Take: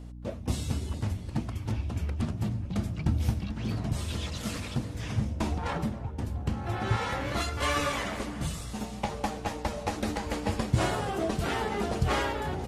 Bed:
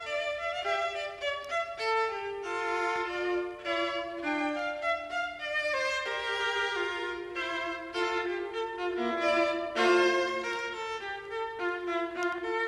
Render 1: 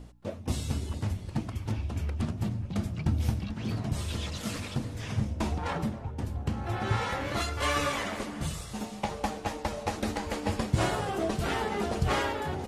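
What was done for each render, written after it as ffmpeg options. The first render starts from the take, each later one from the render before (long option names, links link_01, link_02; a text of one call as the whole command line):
ffmpeg -i in.wav -af "bandreject=frequency=60:width_type=h:width=4,bandreject=frequency=120:width_type=h:width=4,bandreject=frequency=180:width_type=h:width=4,bandreject=frequency=240:width_type=h:width=4,bandreject=frequency=300:width_type=h:width=4" out.wav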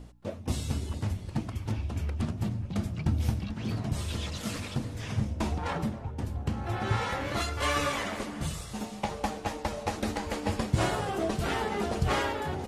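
ffmpeg -i in.wav -af anull out.wav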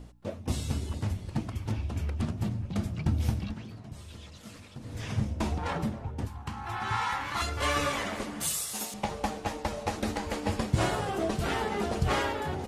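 ffmpeg -i in.wav -filter_complex "[0:a]asettb=1/sr,asplit=3[link_01][link_02][link_03];[link_01]atrim=end=6.274[link_04];[link_02]atrim=start=6.27:end=7.42,asetpts=PTS-STARTPTS,afade=type=in:duration=0.004:curve=qsin,afade=type=out:start_time=1.146:duration=0.004:curve=qsin,lowshelf=frequency=730:width_type=q:width=3:gain=-7.5[link_05];[link_03]atrim=start=7.416[link_06];[link_04][link_05]acrossfade=duration=0.004:curve1=hsin:curve2=qsin[link_07];[link_07][link_06]acrossfade=duration=0.004:curve1=qsin:curve2=hsin,asettb=1/sr,asplit=3[link_08][link_09][link_10];[link_08]atrim=end=8.404[link_11];[link_09]atrim=start=8.4:end=8.94,asetpts=PTS-STARTPTS,afade=type=in:duration=0.004:curve=qsin,afade=type=out:start_time=0.536:duration=0.004:curve=qsin,aemphasis=mode=production:type=riaa[link_12];[link_10]atrim=start=8.936[link_13];[link_11][link_12]acrossfade=duration=0.004:curve1=hsin:curve2=qsin[link_14];[link_14][link_13]acrossfade=duration=0.004:curve1=qsin:curve2=hsin,asplit=3[link_15][link_16][link_17];[link_15]atrim=end=3.67,asetpts=PTS-STARTPTS,afade=type=out:start_time=3.51:duration=0.16:silence=0.237137[link_18];[link_16]atrim=start=3.67:end=4.8,asetpts=PTS-STARTPTS,volume=-12.5dB[link_19];[link_17]atrim=start=4.8,asetpts=PTS-STARTPTS,afade=type=in:duration=0.16:silence=0.237137[link_20];[link_18][link_19][link_20]concat=n=3:v=0:a=1" out.wav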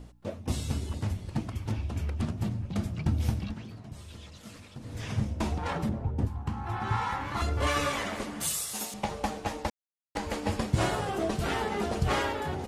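ffmpeg -i in.wav -filter_complex "[0:a]asettb=1/sr,asplit=3[link_01][link_02][link_03];[link_01]atrim=end=5.894[link_04];[link_02]atrim=start=5.89:end=7.67,asetpts=PTS-STARTPTS,afade=type=in:duration=0.004:curve=qsin,afade=type=out:start_time=1.776:duration=0.004:curve=qsin,tiltshelf=frequency=910:gain=6[link_05];[link_03]atrim=start=7.666[link_06];[link_04][link_05]acrossfade=duration=0.004:curve1=hsin:curve2=qsin[link_07];[link_07][link_06]acrossfade=duration=0.004:curve1=qsin:curve2=hsin,asplit=3[link_08][link_09][link_10];[link_08]atrim=end=9.7,asetpts=PTS-STARTPTS,afade=type=out:start_time=9.696:duration=0.004:curve=hsin[link_11];[link_09]atrim=start=9.7:end=10.15,asetpts=PTS-STARTPTS,volume=0[link_12];[link_10]atrim=start=10.15,asetpts=PTS-STARTPTS,afade=type=in:duration=0.004:curve=hsin[link_13];[link_11][link_12][link_13]concat=n=3:v=0:a=1" out.wav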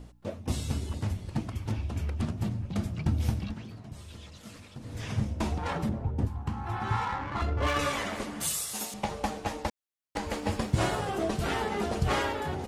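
ffmpeg -i in.wav -filter_complex "[0:a]asettb=1/sr,asplit=3[link_01][link_02][link_03];[link_01]atrim=end=7.054[link_04];[link_02]atrim=start=7.05:end=7.79,asetpts=PTS-STARTPTS,afade=type=in:duration=0.004:curve=qsin,afade=type=out:start_time=0.736:duration=0.004:curve=qsin,adynamicsmooth=sensitivity=5:basefreq=1800[link_05];[link_03]atrim=start=7.786[link_06];[link_04][link_05]acrossfade=duration=0.004:curve1=hsin:curve2=qsin[link_07];[link_07][link_06]acrossfade=duration=0.004:curve1=qsin:curve2=hsin,asettb=1/sr,asplit=3[link_08][link_09][link_10];[link_08]atrim=end=10.344[link_11];[link_09]atrim=start=10.34:end=11.07,asetpts=PTS-STARTPTS,afade=type=in:duration=0.004:curve=qsin,afade=type=out:start_time=0.726:duration=0.004:curve=qsin,aeval=exprs='sgn(val(0))*max(abs(val(0))-0.00119,0)':channel_layout=same[link_12];[link_10]atrim=start=11.066[link_13];[link_11][link_12]acrossfade=duration=0.004:curve1=hsin:curve2=qsin[link_14];[link_14][link_13]acrossfade=duration=0.004:curve1=qsin:curve2=hsin" out.wav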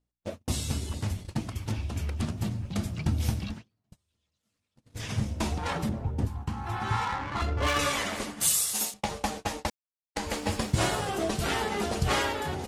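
ffmpeg -i in.wav -af "agate=range=-35dB:threshold=-37dB:ratio=16:detection=peak,highshelf=frequency=2600:gain=7.5" out.wav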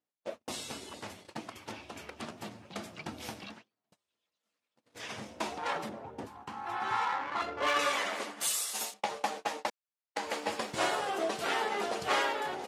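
ffmpeg -i in.wav -af "highpass=440,highshelf=frequency=5000:gain=-10" out.wav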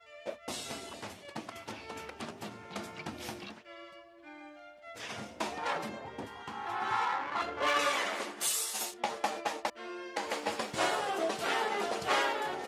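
ffmpeg -i in.wav -i bed.wav -filter_complex "[1:a]volume=-19dB[link_01];[0:a][link_01]amix=inputs=2:normalize=0" out.wav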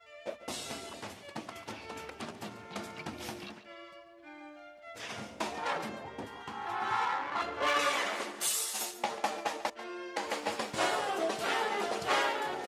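ffmpeg -i in.wav -af "aecho=1:1:141:0.178" out.wav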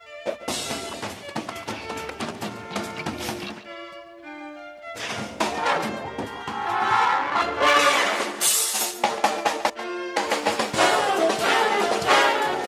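ffmpeg -i in.wav -af "volume=11.5dB" out.wav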